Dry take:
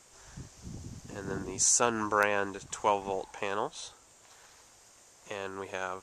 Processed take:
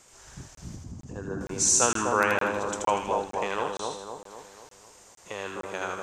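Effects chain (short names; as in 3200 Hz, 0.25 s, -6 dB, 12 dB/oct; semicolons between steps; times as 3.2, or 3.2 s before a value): 0.76–1.41 formant sharpening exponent 1.5; split-band echo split 1200 Hz, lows 0.251 s, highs 80 ms, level -3 dB; crackling interface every 0.46 s, samples 1024, zero, from 0.55; gain +2 dB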